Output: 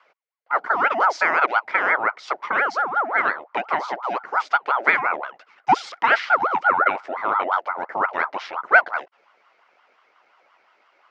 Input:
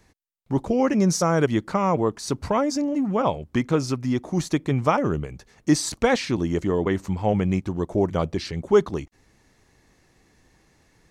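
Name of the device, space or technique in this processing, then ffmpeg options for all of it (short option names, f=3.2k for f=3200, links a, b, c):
voice changer toy: -filter_complex "[0:a]asettb=1/sr,asplit=3[a][b][c];[a]atrim=end=5.284[d];[b]atrim=start=5.28:end=6.9,asetpts=PTS-STARTPTS,afade=t=in:d=0.004:c=qsin,afade=t=out:st=1.616:d=0.004:c=qsin,lowshelf=f=220:t=q:w=3:g=-13[e];[c]atrim=start=6.896[f];[d][e]acrossfade=d=0.004:c1=hsin:c2=qsin[g];[g][f]acrossfade=d=0.004:c1=qsin:c2=hsin,aeval=exprs='val(0)*sin(2*PI*790*n/s+790*0.45/5.7*sin(2*PI*5.7*n/s))':c=same,highpass=510,equalizer=f=1.4k:t=q:w=4:g=6,equalizer=f=2.1k:t=q:w=4:g=9,equalizer=f=3.7k:t=q:w=4:g=-4,lowpass=f=4.4k:w=0.5412,lowpass=f=4.4k:w=1.3066,volume=2dB"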